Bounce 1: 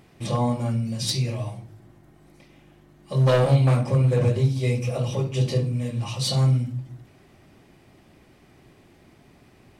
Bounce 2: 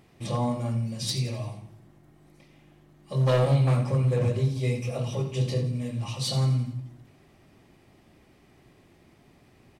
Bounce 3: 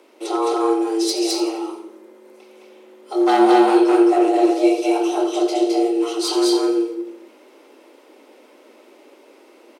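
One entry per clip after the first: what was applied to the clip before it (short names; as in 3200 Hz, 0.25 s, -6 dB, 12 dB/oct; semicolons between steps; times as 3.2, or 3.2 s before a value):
notch 1500 Hz, Q 24; on a send: feedback echo 86 ms, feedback 47%, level -12 dB; on the sum: gain -4 dB
frequency shift +220 Hz; loudspeakers at several distances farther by 73 m -1 dB, 88 m -10 dB; gain +6 dB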